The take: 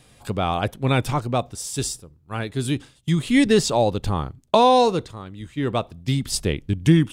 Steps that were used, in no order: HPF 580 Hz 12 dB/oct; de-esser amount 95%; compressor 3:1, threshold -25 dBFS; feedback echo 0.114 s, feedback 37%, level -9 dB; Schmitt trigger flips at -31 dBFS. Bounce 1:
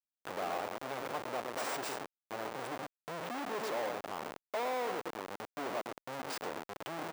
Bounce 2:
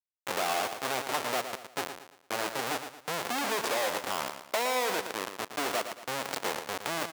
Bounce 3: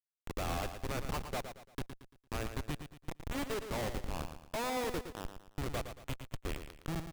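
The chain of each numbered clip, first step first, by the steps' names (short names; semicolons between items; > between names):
compressor > feedback echo > Schmitt trigger > HPF > de-esser; de-esser > Schmitt trigger > HPF > compressor > feedback echo; compressor > de-esser > HPF > Schmitt trigger > feedback echo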